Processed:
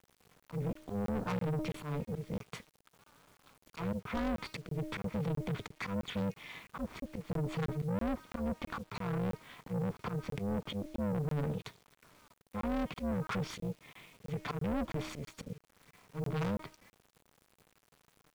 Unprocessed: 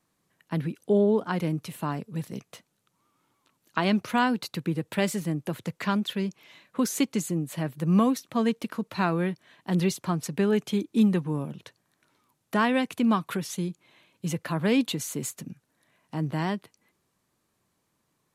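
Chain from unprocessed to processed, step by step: self-modulated delay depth 0.43 ms; de-hum 312.9 Hz, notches 18; low-pass that closes with the level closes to 560 Hz, closed at -19.5 dBFS; tone controls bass +3 dB, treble -7 dB; comb 0.9 ms, depth 73%; slow attack 305 ms; in parallel at +3 dB: peak limiter -23 dBFS, peak gain reduction 9 dB; on the sum: saturation -28 dBFS, distortion -6 dB; AM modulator 300 Hz, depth 90%; bit crusher 10-bit; crackling interface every 0.33 s, samples 1024, zero, from 0.40 s

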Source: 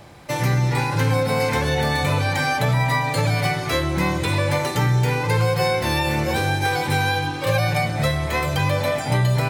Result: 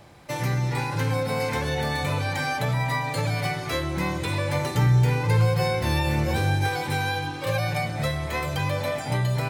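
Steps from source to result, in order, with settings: 4.55–6.69 s: bass shelf 150 Hz +10 dB; trim -5.5 dB

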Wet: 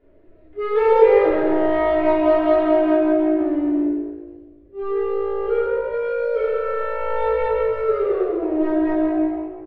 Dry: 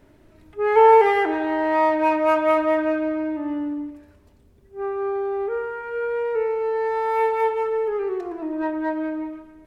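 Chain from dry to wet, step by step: band-stop 840 Hz, Q 25; reverb removal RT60 0.52 s; ten-band graphic EQ 125 Hz -10 dB, 500 Hz +9 dB, 1 kHz -5 dB; waveshaping leveller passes 1; in parallel at -3.5 dB: wavefolder -18.5 dBFS; on the sum: distance through air 430 m; on a send: frequency-shifting echo 131 ms, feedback 34%, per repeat +56 Hz, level -8 dB; on the sum: simulated room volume 520 m³, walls mixed, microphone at 3.2 m; trim -11.5 dB

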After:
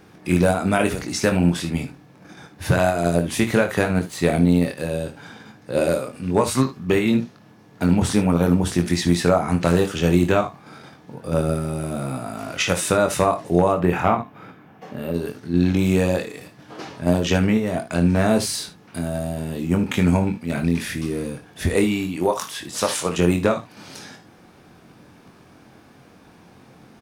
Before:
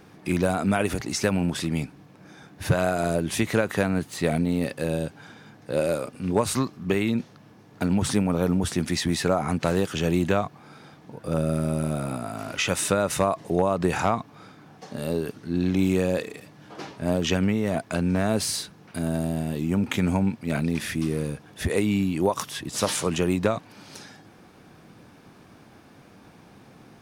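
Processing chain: 13.72–15.14 s: high-order bell 6.3 kHz -12 dB; in parallel at -2 dB: level held to a coarse grid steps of 24 dB; 21.84–23.17 s: on the sum: bass shelf 230 Hz -8.5 dB; early reflections 23 ms -6 dB, 58 ms -14.5 dB, 75 ms -14.5 dB

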